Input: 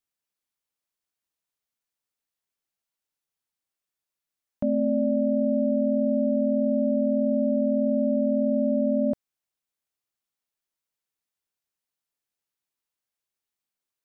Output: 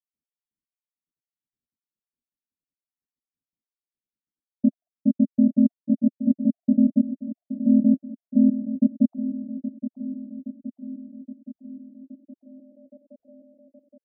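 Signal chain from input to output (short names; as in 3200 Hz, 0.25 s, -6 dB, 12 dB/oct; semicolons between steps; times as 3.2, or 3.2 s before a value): random spectral dropouts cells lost 70%; narrowing echo 0.82 s, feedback 72%, band-pass 370 Hz, level -10 dB; low-pass sweep 250 Hz -> 540 Hz, 11.9–12.94; gain +2.5 dB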